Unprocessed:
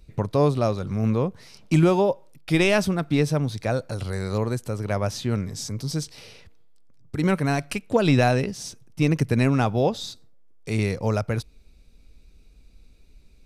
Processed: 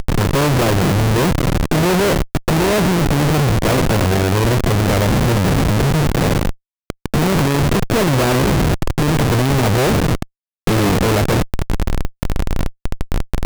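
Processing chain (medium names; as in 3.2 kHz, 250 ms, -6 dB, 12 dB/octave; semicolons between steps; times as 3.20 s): spectral levelling over time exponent 0.4; distance through air 380 m; Schmitt trigger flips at -24.5 dBFS; trim +5.5 dB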